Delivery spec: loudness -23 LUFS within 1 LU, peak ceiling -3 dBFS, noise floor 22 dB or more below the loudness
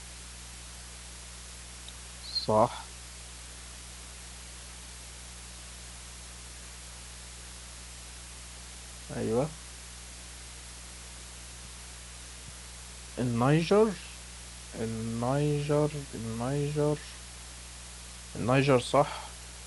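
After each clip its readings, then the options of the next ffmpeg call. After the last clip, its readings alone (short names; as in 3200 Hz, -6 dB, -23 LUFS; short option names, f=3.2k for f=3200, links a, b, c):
hum 60 Hz; harmonics up to 180 Hz; hum level -47 dBFS; noise floor -46 dBFS; noise floor target -52 dBFS; loudness -30.0 LUFS; peak -11.0 dBFS; loudness target -23.0 LUFS
-> -af "bandreject=f=60:t=h:w=4,bandreject=f=120:t=h:w=4,bandreject=f=180:t=h:w=4"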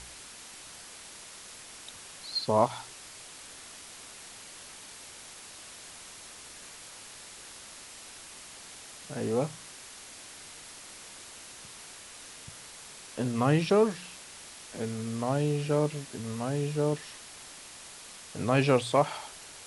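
hum none; noise floor -48 dBFS; noise floor target -52 dBFS
-> -af "afftdn=nr=6:nf=-48"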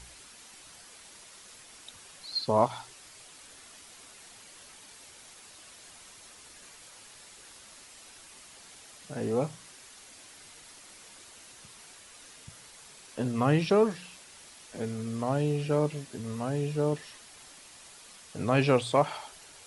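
noise floor -52 dBFS; loudness -29.0 LUFS; peak -11.0 dBFS; loudness target -23.0 LUFS
-> -af "volume=6dB"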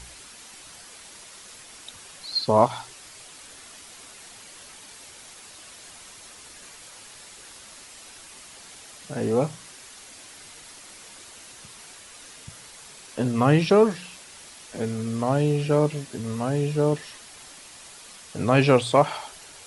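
loudness -23.0 LUFS; peak -5.0 dBFS; noise floor -46 dBFS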